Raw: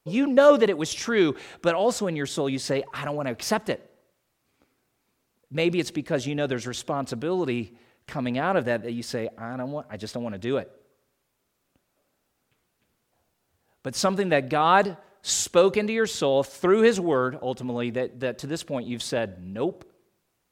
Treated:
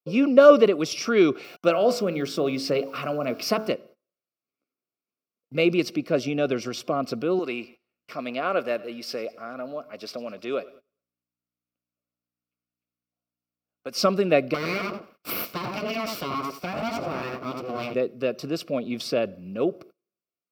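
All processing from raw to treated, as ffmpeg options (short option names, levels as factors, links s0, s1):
-filter_complex "[0:a]asettb=1/sr,asplit=3[s0][s1][s2];[s0]atrim=end=1.444[s3];[s1]atrim=start=1.44:end=3.72,asetpts=PTS-STARTPTS,afade=t=in:d=0.004:c=qsin,afade=t=out:st=2.276:d=0.004:c=qsin,bandreject=f=54.35:t=h:w=4,bandreject=f=108.7:t=h:w=4,bandreject=f=163.05:t=h:w=4,bandreject=f=217.4:t=h:w=4,bandreject=f=271.75:t=h:w=4,bandreject=f=326.1:t=h:w=4,bandreject=f=380.45:t=h:w=4,bandreject=f=434.8:t=h:w=4,bandreject=f=489.15:t=h:w=4,bandreject=f=543.5:t=h:w=4,bandreject=f=597.85:t=h:w=4,bandreject=f=652.2:t=h:w=4,bandreject=f=706.55:t=h:w=4,bandreject=f=760.9:t=h:w=4,bandreject=f=815.25:t=h:w=4,bandreject=f=869.6:t=h:w=4,bandreject=f=923.95:t=h:w=4,bandreject=f=978.3:t=h:w=4,bandreject=f=1032.65:t=h:w=4,bandreject=f=1087:t=h:w=4,bandreject=f=1141.35:t=h:w=4,bandreject=f=1195.7:t=h:w=4,bandreject=f=1250.05:t=h:w=4,bandreject=f=1304.4:t=h:w=4,bandreject=f=1358.75:t=h:w=4,bandreject=f=1413.1:t=h:w=4,bandreject=f=1467.45:t=h:w=4,bandreject=f=1521.8:t=h:w=4,bandreject=f=1576.15:t=h:w=4,bandreject=f=1630.5:t=h:w=4,bandreject=f=1684.85:t=h:w=4,aeval=exprs='val(0)*gte(abs(val(0)),0.00422)':c=same[s4];[s2]atrim=start=3.716[s5];[s3][s4]acrossfade=d=0.004:c1=hsin:c2=qsin[s6];[s6][s5]acrossfade=d=0.004:c1=qsin:c2=hsin,asettb=1/sr,asplit=3[s7][s8][s9];[s7]atrim=end=7.394[s10];[s8]atrim=start=7.39:end=14,asetpts=PTS-STARTPTS,afade=t=in:d=0.004:c=qsin,afade=t=out:st=6.606:d=0.004:c=qsin,highpass=f=610:p=1,aecho=1:1:103|206|309|412:0.0891|0.0446|0.0223|0.0111,atrim=end_sample=291501,aeval=exprs='val(0)+0.000562*(sin(2*PI*60*n/s)+sin(2*PI*2*60*n/s)/2+sin(2*PI*3*60*n/s)/3+sin(2*PI*4*60*n/s)/4+sin(2*PI*5*60*n/s)/5)':c=same[s11];[s9]atrim=start=13.996[s12];[s10][s11]acrossfade=d=0.004:c1=hsin:c2=qsin[s13];[s13][s12]acrossfade=d=0.004:c1=qsin:c2=hsin,asettb=1/sr,asplit=3[s14][s15][s16];[s14]atrim=end=14.544[s17];[s15]atrim=start=14.54:end=17.94,asetpts=PTS-STARTPTS,afade=t=in:d=0.004:c=qsin,afade=t=out:st=3.396:d=0.004:c=qsin,asplit=2[s18][s19];[s19]adelay=85,lowpass=f=1200:p=1,volume=0.668,asplit=2[s20][s21];[s21]adelay=85,lowpass=f=1200:p=1,volume=0.19,asplit=2[s22][s23];[s23]adelay=85,lowpass=f=1200:p=1,volume=0.19[s24];[s18][s20][s22][s24]amix=inputs=4:normalize=0,atrim=end_sample=149940,aeval=exprs='abs(val(0))':c=same,acompressor=threshold=0.0891:ratio=4:attack=3.2:release=140:knee=1:detection=peak[s25];[s16]atrim=start=17.936[s26];[s17][s25]acrossfade=d=0.004:c1=hsin:c2=qsin[s27];[s27][s26]acrossfade=d=0.004:c1=qsin:c2=hsin,superequalizer=9b=0.316:11b=0.316:13b=0.501:15b=0.251:16b=0.316,agate=range=0.0708:threshold=0.00355:ratio=16:detection=peak,highpass=180,volume=1.41"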